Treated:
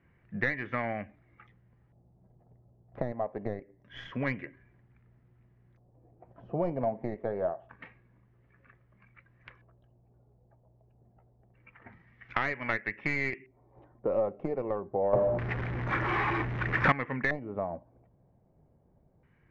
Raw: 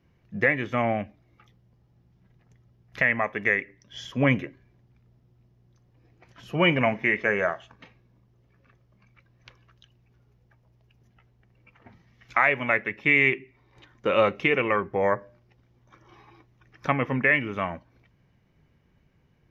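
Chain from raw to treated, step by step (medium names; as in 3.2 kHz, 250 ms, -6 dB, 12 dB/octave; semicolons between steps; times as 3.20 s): tracing distortion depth 0.2 ms; compression 3:1, threshold -31 dBFS, peak gain reduction 13 dB; 15.13–16.92 s: power-law waveshaper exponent 0.35; LFO low-pass square 0.26 Hz 690–1900 Hz; trim -2 dB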